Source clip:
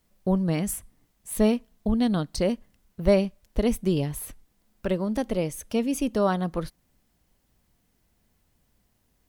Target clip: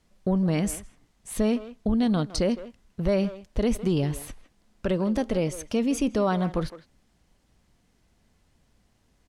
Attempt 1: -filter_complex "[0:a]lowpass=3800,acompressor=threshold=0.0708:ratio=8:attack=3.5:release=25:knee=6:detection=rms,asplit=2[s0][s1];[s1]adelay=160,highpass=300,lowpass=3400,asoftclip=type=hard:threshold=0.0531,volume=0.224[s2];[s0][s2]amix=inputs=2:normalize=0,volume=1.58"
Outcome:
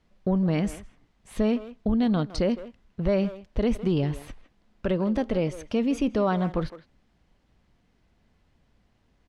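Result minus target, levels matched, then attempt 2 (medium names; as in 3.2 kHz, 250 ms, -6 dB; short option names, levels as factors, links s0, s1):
8 kHz band -11.0 dB
-filter_complex "[0:a]lowpass=7900,acompressor=threshold=0.0708:ratio=8:attack=3.5:release=25:knee=6:detection=rms,asplit=2[s0][s1];[s1]adelay=160,highpass=300,lowpass=3400,asoftclip=type=hard:threshold=0.0531,volume=0.224[s2];[s0][s2]amix=inputs=2:normalize=0,volume=1.58"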